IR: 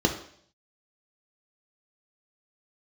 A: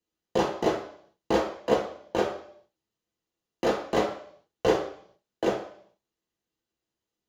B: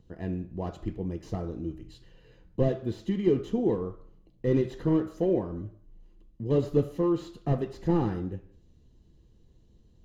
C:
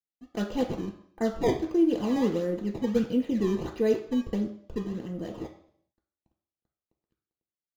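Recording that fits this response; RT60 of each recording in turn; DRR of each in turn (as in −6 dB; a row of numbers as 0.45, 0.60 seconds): C; 0.60, 0.60, 0.60 seconds; −2.0, 6.5, 2.0 decibels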